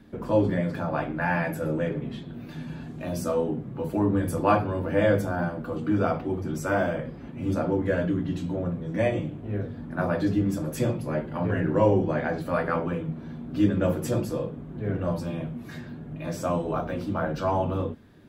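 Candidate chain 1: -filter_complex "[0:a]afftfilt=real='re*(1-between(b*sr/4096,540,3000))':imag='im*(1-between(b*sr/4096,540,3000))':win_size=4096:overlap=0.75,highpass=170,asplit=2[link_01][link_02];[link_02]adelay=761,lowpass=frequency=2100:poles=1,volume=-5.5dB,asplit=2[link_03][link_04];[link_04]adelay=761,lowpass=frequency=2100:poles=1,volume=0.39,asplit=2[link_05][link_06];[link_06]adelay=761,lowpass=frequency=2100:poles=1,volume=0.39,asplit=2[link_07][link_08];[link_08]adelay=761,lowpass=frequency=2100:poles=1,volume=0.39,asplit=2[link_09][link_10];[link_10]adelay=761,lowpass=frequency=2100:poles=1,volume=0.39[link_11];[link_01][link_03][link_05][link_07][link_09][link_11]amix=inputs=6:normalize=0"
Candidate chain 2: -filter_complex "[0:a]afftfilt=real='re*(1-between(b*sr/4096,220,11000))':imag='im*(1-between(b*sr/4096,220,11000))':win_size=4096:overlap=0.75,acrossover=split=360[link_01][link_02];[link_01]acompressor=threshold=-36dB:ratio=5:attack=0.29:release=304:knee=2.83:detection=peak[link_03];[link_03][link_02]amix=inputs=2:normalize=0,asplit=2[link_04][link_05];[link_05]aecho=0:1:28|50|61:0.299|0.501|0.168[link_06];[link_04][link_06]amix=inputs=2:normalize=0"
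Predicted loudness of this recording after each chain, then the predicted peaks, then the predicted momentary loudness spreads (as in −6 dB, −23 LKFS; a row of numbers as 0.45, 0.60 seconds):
−29.0, −39.5 LKFS; −10.0, −26.5 dBFS; 9, 5 LU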